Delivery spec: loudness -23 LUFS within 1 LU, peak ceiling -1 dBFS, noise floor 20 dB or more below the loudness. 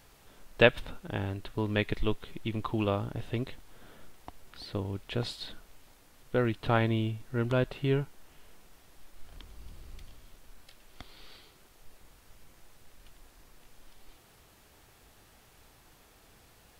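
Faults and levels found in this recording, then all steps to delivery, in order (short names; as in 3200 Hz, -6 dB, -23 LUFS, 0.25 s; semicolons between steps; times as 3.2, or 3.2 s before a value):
loudness -31.5 LUFS; peak -6.5 dBFS; loudness target -23.0 LUFS
-> gain +8.5 dB; limiter -1 dBFS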